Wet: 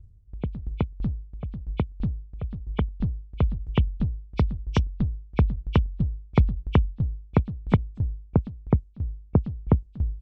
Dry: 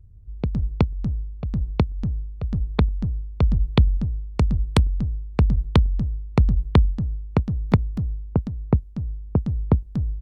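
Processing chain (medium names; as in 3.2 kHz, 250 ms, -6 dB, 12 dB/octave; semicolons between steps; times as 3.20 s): knee-point frequency compression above 2.2 kHz 1.5:1; sawtooth tremolo in dB decaying 3 Hz, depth 19 dB; trim +2 dB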